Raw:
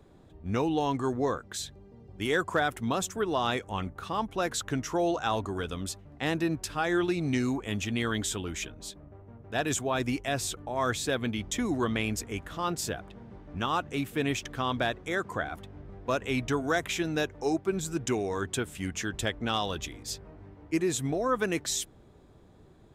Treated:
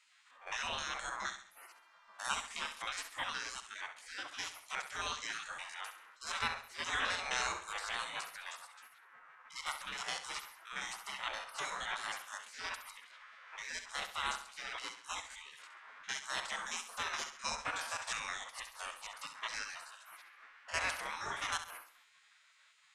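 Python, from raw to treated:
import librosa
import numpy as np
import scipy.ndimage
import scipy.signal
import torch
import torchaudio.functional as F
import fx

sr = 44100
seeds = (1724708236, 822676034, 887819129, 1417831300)

y = fx.spec_steps(x, sr, hold_ms=50)
y = scipy.signal.sosfilt(scipy.signal.butter(4, 9300.0, 'lowpass', fs=sr, output='sos'), y)
y = fx.spec_gate(y, sr, threshold_db=-30, keep='weak')
y = fx.peak_eq(y, sr, hz=1300.0, db=11.0, octaves=1.8)
y = fx.echo_feedback(y, sr, ms=67, feedback_pct=41, wet_db=-10.5)
y = F.gain(torch.from_numpy(y), 7.0).numpy()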